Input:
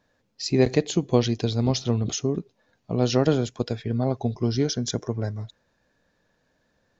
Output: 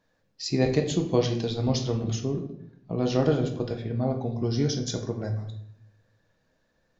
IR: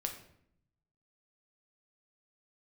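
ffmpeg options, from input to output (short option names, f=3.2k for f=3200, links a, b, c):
-filter_complex "[0:a]asettb=1/sr,asplit=3[a][b][c];[a]atrim=end=2.094[d];[b]atrim=start=2.09:end=4.44,asetpts=PTS-STARTPTS,afade=t=in:d=0.004:c=qsin,afade=t=out:st=2.346:d=0.004:c=qsin,highshelf=f=5.7k:g=-11[e];[c]atrim=start=4.436[f];[d][e]acrossfade=d=0.004:c1=hsin:c2=qsin[g];[g][f]acrossfade=d=0.004:c1=qsin:c2=hsin[h];[1:a]atrim=start_sample=2205[i];[h][i]afir=irnorm=-1:irlink=0,volume=-3dB"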